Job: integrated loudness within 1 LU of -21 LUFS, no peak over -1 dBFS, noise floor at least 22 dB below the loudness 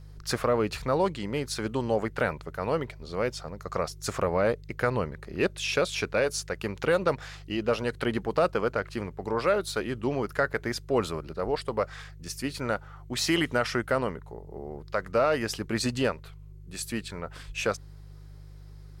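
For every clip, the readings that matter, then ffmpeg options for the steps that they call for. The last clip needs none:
hum 50 Hz; harmonics up to 150 Hz; hum level -43 dBFS; loudness -29.0 LUFS; peak -13.0 dBFS; loudness target -21.0 LUFS
-> -af "bandreject=f=50:t=h:w=4,bandreject=f=100:t=h:w=4,bandreject=f=150:t=h:w=4"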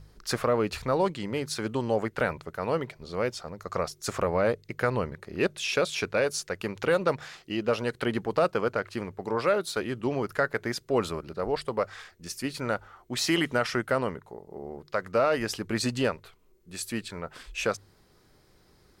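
hum none; loudness -29.5 LUFS; peak -13.0 dBFS; loudness target -21.0 LUFS
-> -af "volume=8.5dB"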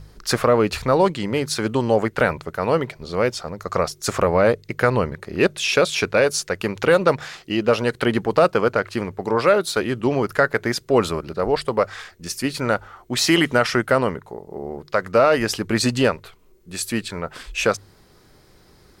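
loudness -21.0 LUFS; peak -4.5 dBFS; noise floor -53 dBFS

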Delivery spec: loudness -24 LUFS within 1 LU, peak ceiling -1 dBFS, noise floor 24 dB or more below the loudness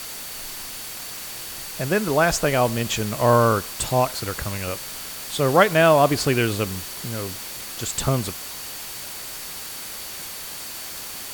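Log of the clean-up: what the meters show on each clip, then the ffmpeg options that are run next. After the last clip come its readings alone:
steady tone 4500 Hz; tone level -44 dBFS; noise floor -35 dBFS; noise floor target -48 dBFS; loudness -23.5 LUFS; peak -3.5 dBFS; loudness target -24.0 LUFS
-> -af "bandreject=f=4.5k:w=30"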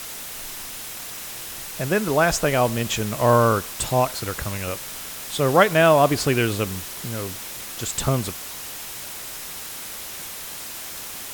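steady tone none; noise floor -35 dBFS; noise floor target -48 dBFS
-> -af "afftdn=nr=13:nf=-35"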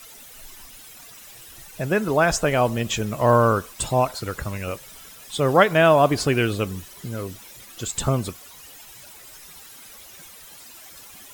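noise floor -45 dBFS; noise floor target -46 dBFS
-> -af "afftdn=nr=6:nf=-45"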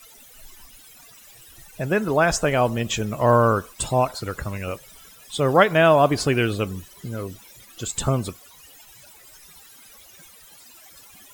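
noise floor -49 dBFS; loudness -21.5 LUFS; peak -3.5 dBFS; loudness target -24.0 LUFS
-> -af "volume=-2.5dB"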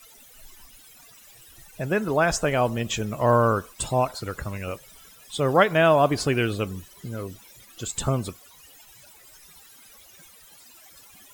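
loudness -24.0 LUFS; peak -6.0 dBFS; noise floor -51 dBFS

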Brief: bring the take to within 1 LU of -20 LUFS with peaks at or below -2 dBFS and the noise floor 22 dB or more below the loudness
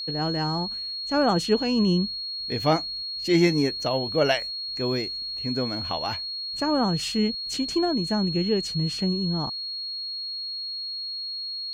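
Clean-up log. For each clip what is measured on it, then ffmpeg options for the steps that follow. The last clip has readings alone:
steady tone 4300 Hz; tone level -30 dBFS; loudness -25.5 LUFS; peak -8.5 dBFS; loudness target -20.0 LUFS
-> -af "bandreject=f=4.3k:w=30"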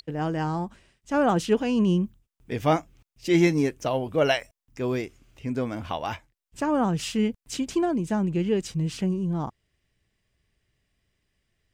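steady tone none; loudness -26.0 LUFS; peak -8.5 dBFS; loudness target -20.0 LUFS
-> -af "volume=6dB"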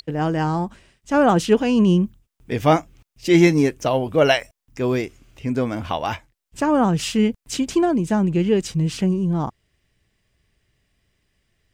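loudness -20.0 LUFS; peak -2.5 dBFS; noise floor -82 dBFS

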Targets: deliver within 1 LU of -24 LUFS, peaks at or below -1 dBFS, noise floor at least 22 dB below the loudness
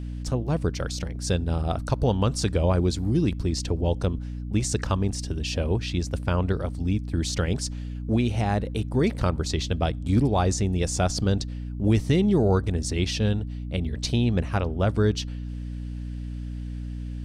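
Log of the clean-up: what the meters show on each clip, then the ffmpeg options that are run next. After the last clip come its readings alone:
hum 60 Hz; harmonics up to 300 Hz; hum level -30 dBFS; loudness -26.0 LUFS; peak -9.5 dBFS; loudness target -24.0 LUFS
-> -af "bandreject=f=60:t=h:w=6,bandreject=f=120:t=h:w=6,bandreject=f=180:t=h:w=6,bandreject=f=240:t=h:w=6,bandreject=f=300:t=h:w=6"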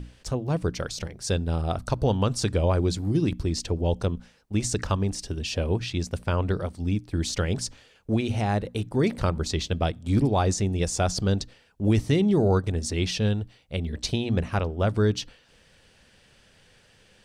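hum none; loudness -26.5 LUFS; peak -10.0 dBFS; loudness target -24.0 LUFS
-> -af "volume=2.5dB"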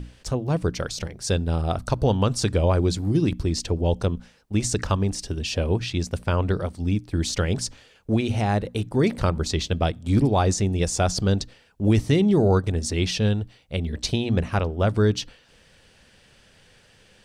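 loudness -24.0 LUFS; peak -7.5 dBFS; noise floor -56 dBFS

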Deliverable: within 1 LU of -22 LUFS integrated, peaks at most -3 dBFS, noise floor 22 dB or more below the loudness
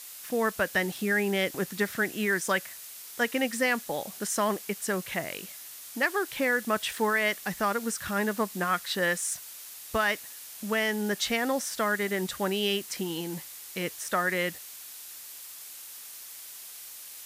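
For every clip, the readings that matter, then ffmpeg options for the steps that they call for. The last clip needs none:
noise floor -45 dBFS; noise floor target -51 dBFS; loudness -29.0 LUFS; peak -13.5 dBFS; loudness target -22.0 LUFS
-> -af "afftdn=nr=6:nf=-45"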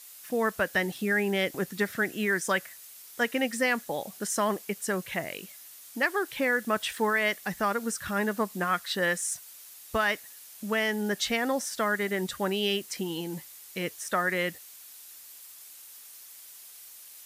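noise floor -49 dBFS; noise floor target -51 dBFS
-> -af "afftdn=nr=6:nf=-49"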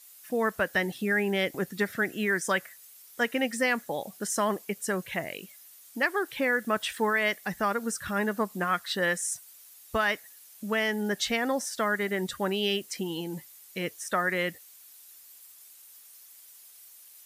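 noise floor -53 dBFS; loudness -29.0 LUFS; peak -13.5 dBFS; loudness target -22.0 LUFS
-> -af "volume=7dB"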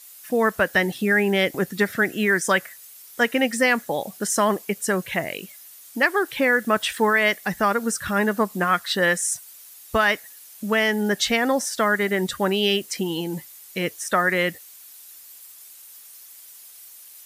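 loudness -22.0 LUFS; peak -6.5 dBFS; noise floor -46 dBFS

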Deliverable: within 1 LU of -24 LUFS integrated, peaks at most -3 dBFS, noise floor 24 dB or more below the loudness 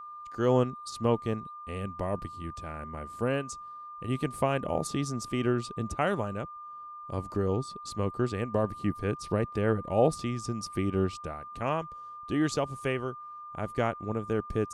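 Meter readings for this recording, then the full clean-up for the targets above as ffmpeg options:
steady tone 1200 Hz; tone level -41 dBFS; loudness -31.5 LUFS; peak -11.5 dBFS; loudness target -24.0 LUFS
-> -af "bandreject=f=1.2k:w=30"
-af "volume=7.5dB"

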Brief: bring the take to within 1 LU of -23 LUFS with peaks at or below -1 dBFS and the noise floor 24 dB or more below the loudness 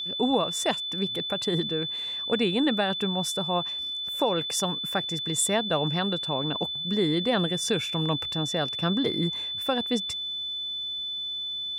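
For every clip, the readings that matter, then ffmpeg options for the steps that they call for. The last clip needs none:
steady tone 3500 Hz; tone level -30 dBFS; loudness -26.5 LUFS; peak -12.5 dBFS; loudness target -23.0 LUFS
-> -af "bandreject=f=3.5k:w=30"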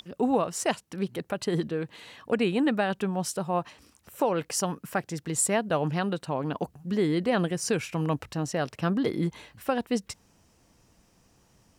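steady tone none; loudness -28.5 LUFS; peak -14.0 dBFS; loudness target -23.0 LUFS
-> -af "volume=5.5dB"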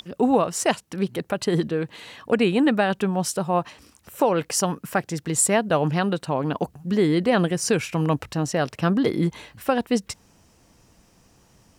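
loudness -23.0 LUFS; peak -8.5 dBFS; noise floor -58 dBFS

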